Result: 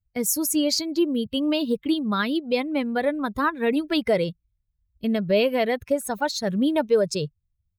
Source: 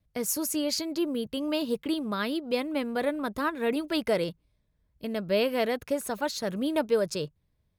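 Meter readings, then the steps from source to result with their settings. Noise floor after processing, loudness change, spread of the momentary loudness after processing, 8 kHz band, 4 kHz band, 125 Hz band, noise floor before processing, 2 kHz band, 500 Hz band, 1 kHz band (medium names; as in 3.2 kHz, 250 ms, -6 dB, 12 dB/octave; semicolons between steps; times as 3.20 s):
-77 dBFS, +5.5 dB, 5 LU, +5.5 dB, +5.0 dB, +7.5 dB, -73 dBFS, +5.0 dB, +4.5 dB, +5.5 dB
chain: expander on every frequency bin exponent 1.5; recorder AGC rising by 5.5 dB/s; in parallel at +1 dB: peak limiter -22.5 dBFS, peak gain reduction 7 dB; on the sum: trim +2 dB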